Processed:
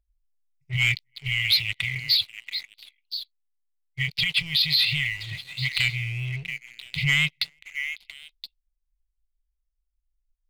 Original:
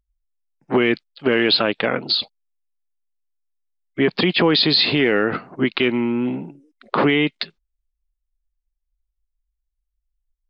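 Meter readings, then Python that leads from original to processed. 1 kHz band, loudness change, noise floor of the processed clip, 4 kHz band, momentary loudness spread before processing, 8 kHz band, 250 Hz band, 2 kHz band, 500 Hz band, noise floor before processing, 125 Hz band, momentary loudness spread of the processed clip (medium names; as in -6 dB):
-24.0 dB, -5.5 dB, -78 dBFS, -2.0 dB, 11 LU, no reading, under -20 dB, -1.5 dB, under -35 dB, -79 dBFS, 0.0 dB, 17 LU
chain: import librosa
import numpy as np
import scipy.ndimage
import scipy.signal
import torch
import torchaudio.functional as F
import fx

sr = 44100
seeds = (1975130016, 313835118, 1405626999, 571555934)

p1 = fx.brickwall_bandstop(x, sr, low_hz=150.0, high_hz=1900.0)
p2 = fx.low_shelf(p1, sr, hz=72.0, db=10.0)
p3 = fx.rider(p2, sr, range_db=4, speed_s=0.5)
p4 = fx.vibrato(p3, sr, rate_hz=3.9, depth_cents=36.0)
p5 = p4 + fx.echo_stepped(p4, sr, ms=341, hz=690.0, octaves=1.4, feedback_pct=70, wet_db=-6.5, dry=0)
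p6 = fx.leveller(p5, sr, passes=2)
y = p6 * 10.0 ** (-6.5 / 20.0)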